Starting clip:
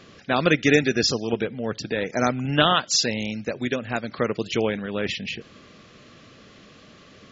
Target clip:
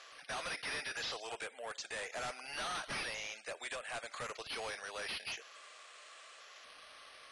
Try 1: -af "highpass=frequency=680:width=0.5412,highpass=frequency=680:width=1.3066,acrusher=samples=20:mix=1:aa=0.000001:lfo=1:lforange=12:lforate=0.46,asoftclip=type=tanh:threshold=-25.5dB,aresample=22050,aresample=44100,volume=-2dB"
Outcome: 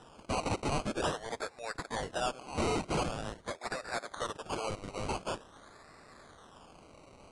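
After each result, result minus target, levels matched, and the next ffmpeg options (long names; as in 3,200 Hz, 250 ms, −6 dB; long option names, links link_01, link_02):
sample-and-hold swept by an LFO: distortion +25 dB; soft clipping: distortion −5 dB
-af "highpass=frequency=680:width=0.5412,highpass=frequency=680:width=1.3066,acrusher=samples=5:mix=1:aa=0.000001:lfo=1:lforange=3:lforate=0.46,asoftclip=type=tanh:threshold=-25.5dB,aresample=22050,aresample=44100,volume=-2dB"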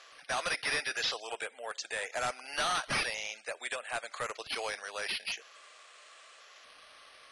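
soft clipping: distortion −5 dB
-af "highpass=frequency=680:width=0.5412,highpass=frequency=680:width=1.3066,acrusher=samples=5:mix=1:aa=0.000001:lfo=1:lforange=3:lforate=0.46,asoftclip=type=tanh:threshold=-36dB,aresample=22050,aresample=44100,volume=-2dB"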